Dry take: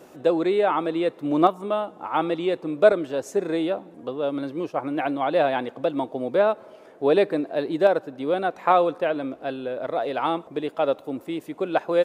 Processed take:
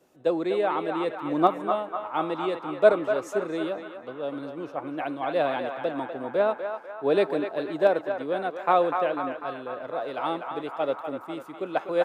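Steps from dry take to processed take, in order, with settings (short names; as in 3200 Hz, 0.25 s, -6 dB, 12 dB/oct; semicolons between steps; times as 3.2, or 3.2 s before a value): on a send: narrowing echo 0.248 s, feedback 75%, band-pass 1300 Hz, level -3.5 dB; on the sum: three-band expander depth 40%; gain -4.5 dB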